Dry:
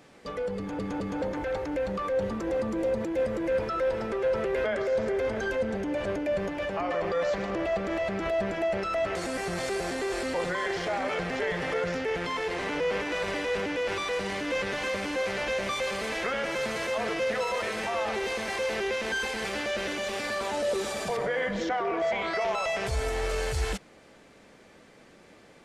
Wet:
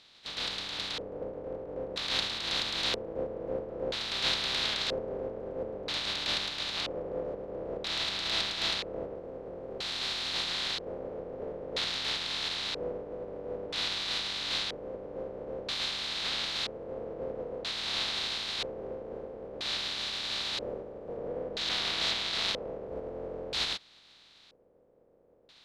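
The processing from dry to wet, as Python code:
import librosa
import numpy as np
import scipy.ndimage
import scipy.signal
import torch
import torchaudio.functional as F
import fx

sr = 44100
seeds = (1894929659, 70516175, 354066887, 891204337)

y = fx.spec_flatten(x, sr, power=0.15)
y = fx.filter_lfo_lowpass(y, sr, shape='square', hz=0.51, low_hz=500.0, high_hz=3900.0, q=4.7)
y = y * 10.0 ** (-6.5 / 20.0)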